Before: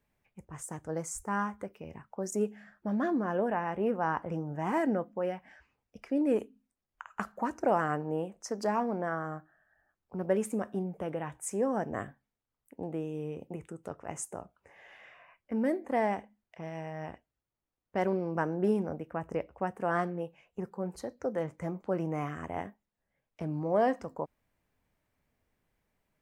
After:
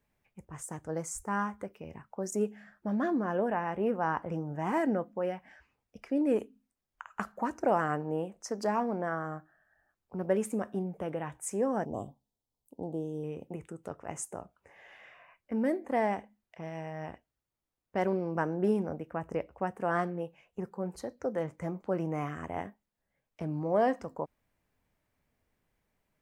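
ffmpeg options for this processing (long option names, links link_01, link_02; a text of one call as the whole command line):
ffmpeg -i in.wav -filter_complex "[0:a]asettb=1/sr,asplit=3[link_01][link_02][link_03];[link_01]atrim=end=11.854[link_04];[link_02]atrim=start=11.85:end=13.24,asetpts=PTS-STARTPTS,afade=type=in:duration=0.004:curve=qsin,afade=type=out:start_time=1.386:duration=0.004:curve=qsin,asuperstop=centerf=1800:order=8:qfactor=0.8[link_05];[link_03]atrim=start=13.236[link_06];[link_04][link_05]acrossfade=duration=0.004:curve1=hsin:curve2=qsin[link_07];[link_07][link_06]acrossfade=duration=0.004:curve1=qsin:curve2=hsin" out.wav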